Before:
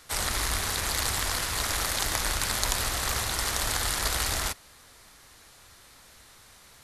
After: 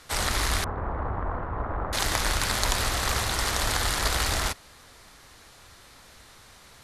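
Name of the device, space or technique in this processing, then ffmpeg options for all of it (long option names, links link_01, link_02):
exciter from parts: -filter_complex "[0:a]asettb=1/sr,asplit=3[link_01][link_02][link_03];[link_01]atrim=end=0.644[link_04];[link_02]atrim=start=0.64:end=1.93,asetpts=PTS-STARTPTS,afade=type=in:duration=0.004:curve=qsin,afade=type=out:start_time=1.286:duration=0.004:curve=qsin,lowpass=frequency=1200:width=0.5412,lowpass=frequency=1200:width=1.3066[link_05];[link_03]atrim=start=1.926[link_06];[link_04][link_05]acrossfade=duration=0.004:curve1=hsin:curve2=qsin[link_07];[link_07][link_06]acrossfade=duration=0.004:curve1=qsin:curve2=hsin,aemphasis=mode=reproduction:type=cd,asplit=2[link_08][link_09];[link_09]highpass=2700,asoftclip=type=tanh:threshold=-28dB,volume=-10dB[link_10];[link_08][link_10]amix=inputs=2:normalize=0,volume=4dB"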